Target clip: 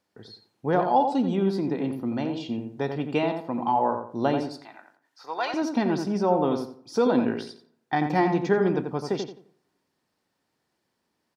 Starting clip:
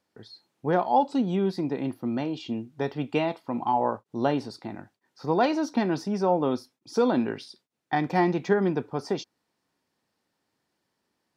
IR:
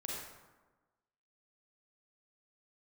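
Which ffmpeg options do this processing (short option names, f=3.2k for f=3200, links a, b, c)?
-filter_complex "[0:a]asettb=1/sr,asplit=3[a][b][c];[a]atrim=end=4.444[d];[b]atrim=start=4.44:end=5.54,asetpts=PTS-STARTPTS,afade=t=in:d=0.004:c=qsin,afade=t=out:st=1.096:d=0.004:c=qsin,highpass=970[e];[c]atrim=start=5.536[f];[d][e]acrossfade=d=0.004:c1=hsin:c2=qsin[g];[g][f]acrossfade=d=0.004:c1=qsin:c2=hsin,asplit=2[h][i];[i]adelay=87,lowpass=f=1.7k:p=1,volume=-5.5dB,asplit=2[j][k];[k]adelay=87,lowpass=f=1.7k:p=1,volume=0.31,asplit=2[l][m];[m]adelay=87,lowpass=f=1.7k:p=1,volume=0.31,asplit=2[n][o];[o]adelay=87,lowpass=f=1.7k:p=1,volume=0.31[p];[h][j][l][n][p]amix=inputs=5:normalize=0,asplit=2[q][r];[1:a]atrim=start_sample=2205,asetrate=52920,aresample=44100[s];[r][s]afir=irnorm=-1:irlink=0,volume=-22dB[t];[q][t]amix=inputs=2:normalize=0"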